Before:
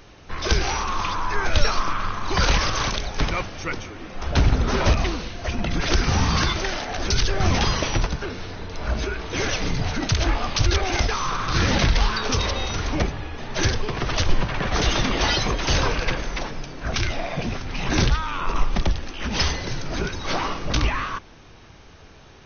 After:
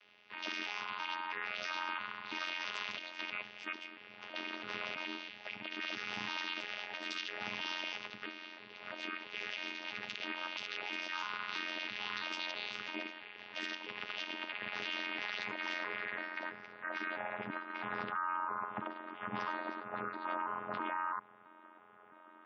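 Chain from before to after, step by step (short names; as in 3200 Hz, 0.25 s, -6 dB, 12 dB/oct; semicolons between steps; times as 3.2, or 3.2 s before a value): arpeggiated vocoder bare fifth, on G#3, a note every 0.33 s; band-pass sweep 2700 Hz -> 1200 Hz, 14.47–18.45; limiter -33.5 dBFS, peak gain reduction 10.5 dB; added harmonics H 7 -36 dB, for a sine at -33 dBFS; spectral gate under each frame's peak -30 dB strong; AM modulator 89 Hz, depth 70%; gain +6.5 dB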